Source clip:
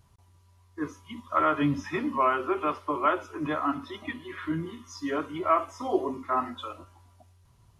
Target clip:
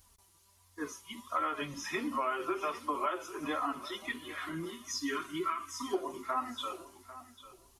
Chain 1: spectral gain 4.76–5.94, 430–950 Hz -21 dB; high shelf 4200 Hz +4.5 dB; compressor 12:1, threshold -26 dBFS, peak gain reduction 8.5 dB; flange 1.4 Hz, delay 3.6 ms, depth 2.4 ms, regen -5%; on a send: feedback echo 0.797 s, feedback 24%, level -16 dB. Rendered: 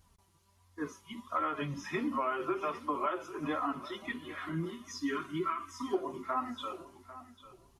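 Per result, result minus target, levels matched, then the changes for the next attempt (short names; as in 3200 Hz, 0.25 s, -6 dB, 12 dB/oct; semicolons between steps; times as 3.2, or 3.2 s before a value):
8000 Hz band -8.0 dB; 125 Hz band +8.0 dB
change: high shelf 4200 Hz +16 dB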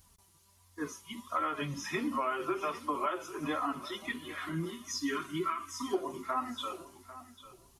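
125 Hz band +7.0 dB
add after compressor: bell 150 Hz -8.5 dB 1.1 oct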